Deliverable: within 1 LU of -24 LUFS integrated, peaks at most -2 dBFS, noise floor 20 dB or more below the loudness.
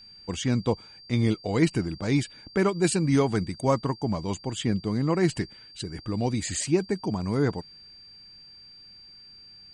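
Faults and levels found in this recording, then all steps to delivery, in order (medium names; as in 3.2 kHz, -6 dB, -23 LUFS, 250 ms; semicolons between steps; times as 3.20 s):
steady tone 4.7 kHz; tone level -47 dBFS; loudness -27.0 LUFS; peak level -8.5 dBFS; loudness target -24.0 LUFS
-> band-stop 4.7 kHz, Q 30; trim +3 dB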